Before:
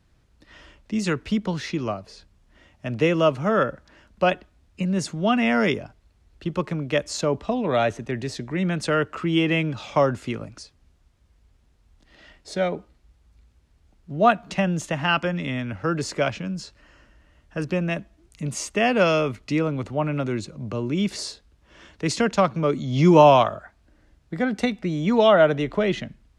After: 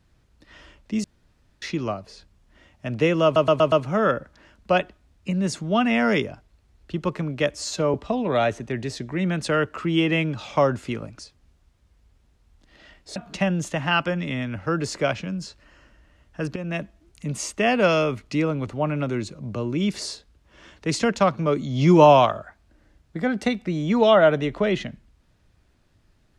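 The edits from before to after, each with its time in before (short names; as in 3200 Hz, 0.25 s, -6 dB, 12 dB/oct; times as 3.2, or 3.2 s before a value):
1.04–1.62 room tone
3.24 stutter 0.12 s, 5 plays
7.07–7.33 stretch 1.5×
12.55–14.33 cut
17.73–17.98 fade in, from -12 dB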